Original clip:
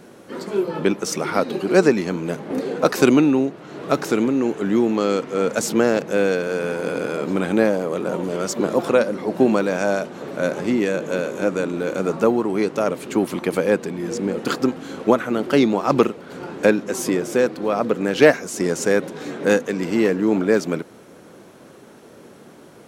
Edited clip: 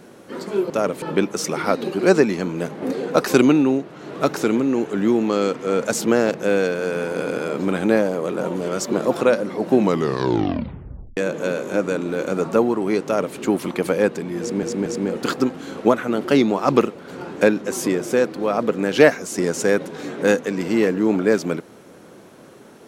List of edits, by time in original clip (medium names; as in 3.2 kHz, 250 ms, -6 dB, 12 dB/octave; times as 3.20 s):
9.42 s: tape stop 1.43 s
12.72–13.04 s: copy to 0.70 s
14.08 s: stutter 0.23 s, 3 plays